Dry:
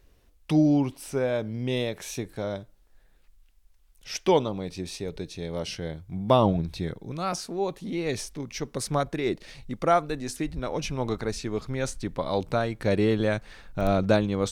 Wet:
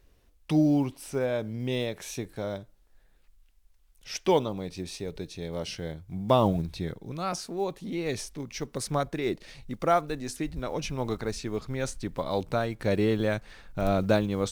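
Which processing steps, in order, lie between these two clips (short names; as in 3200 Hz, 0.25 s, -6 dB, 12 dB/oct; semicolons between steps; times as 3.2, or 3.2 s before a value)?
block floating point 7-bit; gain -2 dB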